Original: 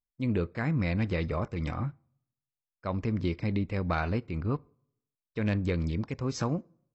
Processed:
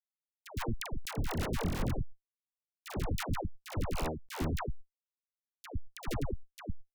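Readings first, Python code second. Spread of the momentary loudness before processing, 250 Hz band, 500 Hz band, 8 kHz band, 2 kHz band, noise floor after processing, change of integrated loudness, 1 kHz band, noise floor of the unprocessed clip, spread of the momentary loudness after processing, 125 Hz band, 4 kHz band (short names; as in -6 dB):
7 LU, -9.5 dB, -7.0 dB, n/a, -6.0 dB, under -85 dBFS, -6.5 dB, -3.5 dB, under -85 dBFS, 12 LU, -7.5 dB, +1.0 dB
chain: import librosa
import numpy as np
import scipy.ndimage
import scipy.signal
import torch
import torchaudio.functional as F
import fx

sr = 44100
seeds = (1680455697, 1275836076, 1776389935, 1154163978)

y = fx.hum_notches(x, sr, base_hz=50, count=3)
y = fx.env_lowpass_down(y, sr, base_hz=810.0, full_db=-29.5)
y = fx.peak_eq(y, sr, hz=370.0, db=12.5, octaves=2.3)
y = fx.hpss(y, sr, part='percussive', gain_db=-10)
y = fx.dynamic_eq(y, sr, hz=170.0, q=5.2, threshold_db=-43.0, ratio=4.0, max_db=-7)
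y = fx.over_compress(y, sr, threshold_db=-33.0, ratio=-1.0)
y = fx.schmitt(y, sr, flips_db=-27.0)
y = fx.dispersion(y, sr, late='lows', ms=117.0, hz=670.0)
y = fx.sustainer(y, sr, db_per_s=85.0)
y = y * 10.0 ** (4.0 / 20.0)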